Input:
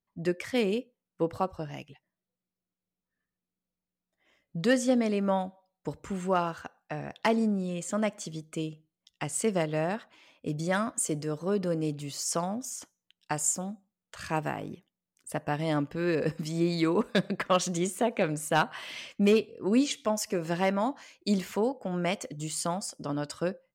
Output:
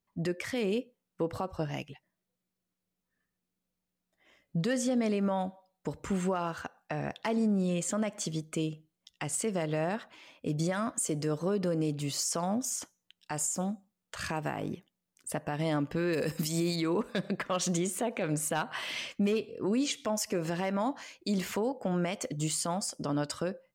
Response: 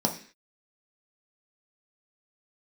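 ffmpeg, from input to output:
-filter_complex "[0:a]asettb=1/sr,asplit=3[a][b][c];[a]atrim=end=16.134[d];[b]atrim=start=16.13:end=16.76,asetpts=PTS-STARTPTS,afade=t=in:d=0.004:c=qsin,afade=t=out:st=0.626:d=0.004:c=qsin,aemphasis=mode=production:type=75kf[e];[c]atrim=start=16.756[f];[d][e]acrossfade=d=0.004:c1=hsin:c2=qsin[g];[g][f]acrossfade=d=0.004:c1=qsin:c2=hsin,alimiter=level_in=2dB:limit=-24dB:level=0:latency=1:release=129,volume=-2dB,volume=4dB"

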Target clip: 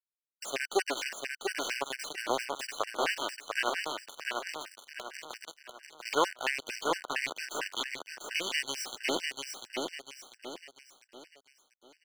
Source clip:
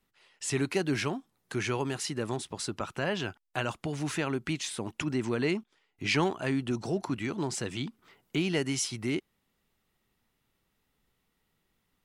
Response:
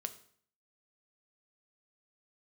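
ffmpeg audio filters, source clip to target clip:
-filter_complex "[0:a]aeval=exprs='if(lt(val(0),0),0.251*val(0),val(0))':c=same,aemphasis=mode=production:type=bsi,asettb=1/sr,asplit=3[a][b][c];[a]atrim=end=3.924[d];[b]atrim=start=3.92:end=6.13,asetpts=PTS-STARTPTS,afade=t=in:d=0.004:c=qsin,afade=t=out:st=2.206:d=0.004:c=qsin,acompressor=threshold=-37dB:ratio=16[e];[c]atrim=start=6.126[f];[d][e]acrossfade=d=0.004:c1=hsin:c2=qsin[g];[g][f]acrossfade=d=0.004:c1=qsin:c2=hsin,aphaser=in_gain=1:out_gain=1:delay=3.7:decay=0.47:speed=0.44:type=triangular,aeval=exprs='val(0)*gte(abs(val(0)),0.0316)':c=same,deesser=0.55,acrossover=split=320 7300:gain=0.0708 1 0.2[h][i][j];[h][i][j]amix=inputs=3:normalize=0,aecho=1:1:695|1390|2085|2780|3475:0.631|0.252|0.101|0.0404|0.0162,afftfilt=real='re*gt(sin(2*PI*4.4*pts/sr)*(1-2*mod(floor(b*sr/1024/1500),2)),0)':imag='im*gt(sin(2*PI*4.4*pts/sr)*(1-2*mod(floor(b*sr/1024/1500),2)),0)':win_size=1024:overlap=0.75,volume=7.5dB"

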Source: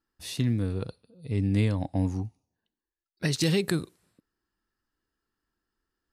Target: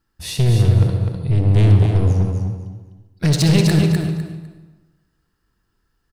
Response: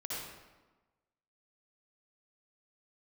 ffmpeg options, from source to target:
-filter_complex "[0:a]lowshelf=f=200:t=q:w=1.5:g=7,aeval=exprs='(tanh(12.6*val(0)+0.3)-tanh(0.3))/12.6':c=same,aecho=1:1:252|504|756:0.531|0.111|0.0234,asplit=2[a][b];[1:a]atrim=start_sample=2205[c];[b][c]afir=irnorm=-1:irlink=0,volume=-4dB[d];[a][d]amix=inputs=2:normalize=0,volume=7.5dB"

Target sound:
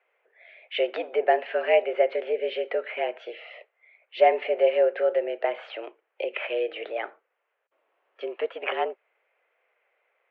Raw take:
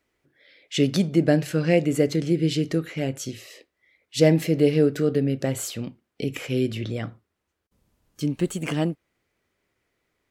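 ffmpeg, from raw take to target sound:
-filter_complex "[0:a]asplit=2[a][b];[b]acompressor=threshold=-27dB:ratio=6,volume=-1dB[c];[a][c]amix=inputs=2:normalize=0,highpass=f=390:t=q:w=0.5412,highpass=f=390:t=q:w=1.307,lowpass=f=2.7k:t=q:w=0.5176,lowpass=f=2.7k:t=q:w=0.7071,lowpass=f=2.7k:t=q:w=1.932,afreqshift=100"

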